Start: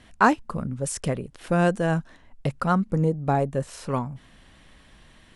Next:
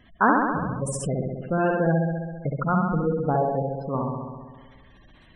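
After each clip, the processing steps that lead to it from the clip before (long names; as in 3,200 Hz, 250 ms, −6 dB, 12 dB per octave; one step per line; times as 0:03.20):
flutter between parallel walls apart 11.4 metres, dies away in 1.5 s
gate on every frequency bin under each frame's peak −20 dB strong
level −2 dB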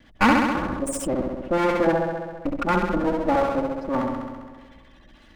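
lower of the sound and its delayed copy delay 3.5 ms
level +3 dB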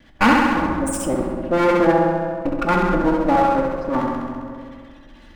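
dense smooth reverb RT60 1.8 s, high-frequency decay 0.4×, DRR 4 dB
level +2.5 dB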